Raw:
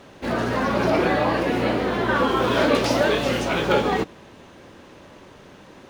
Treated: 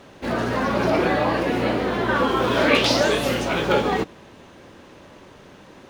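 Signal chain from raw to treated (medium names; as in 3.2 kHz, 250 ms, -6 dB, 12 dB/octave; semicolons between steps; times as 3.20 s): 2.65–3.33 s: peaking EQ 1.8 kHz -> 15 kHz +12 dB 0.76 oct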